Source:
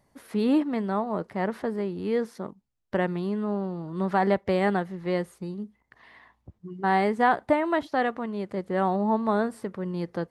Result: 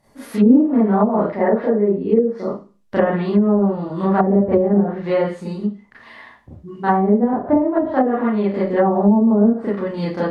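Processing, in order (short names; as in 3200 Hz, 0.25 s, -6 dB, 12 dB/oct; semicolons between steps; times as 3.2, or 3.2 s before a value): 1.3–2.47 formant sharpening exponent 1.5; Schroeder reverb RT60 0.34 s, combs from 27 ms, DRR -9 dB; treble ducked by the level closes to 370 Hz, closed at -10.5 dBFS; gain +2.5 dB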